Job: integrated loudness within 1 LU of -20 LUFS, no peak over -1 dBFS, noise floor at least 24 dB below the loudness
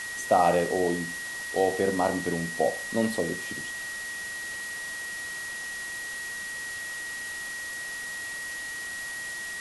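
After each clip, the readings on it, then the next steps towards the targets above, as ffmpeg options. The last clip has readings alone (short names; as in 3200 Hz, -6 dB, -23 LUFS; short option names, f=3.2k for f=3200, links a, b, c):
steady tone 1900 Hz; tone level -34 dBFS; noise floor -36 dBFS; noise floor target -54 dBFS; loudness -29.5 LUFS; peak -9.5 dBFS; loudness target -20.0 LUFS
-> -af "bandreject=f=1.9k:w=30"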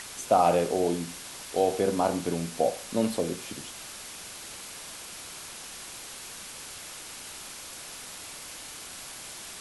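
steady tone none; noise floor -43 dBFS; noise floor target -55 dBFS
-> -af "afftdn=nr=12:nf=-43"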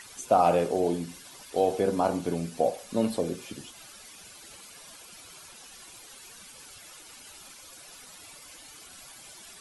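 noise floor -49 dBFS; noise floor target -52 dBFS
-> -af "afftdn=nr=6:nf=-49"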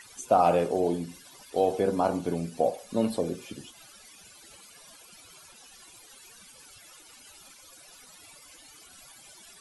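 noise floor -53 dBFS; loudness -27.5 LUFS; peak -9.5 dBFS; loudness target -20.0 LUFS
-> -af "volume=7.5dB"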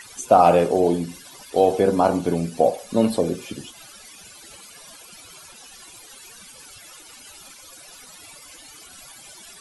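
loudness -20.0 LUFS; peak -2.0 dBFS; noise floor -45 dBFS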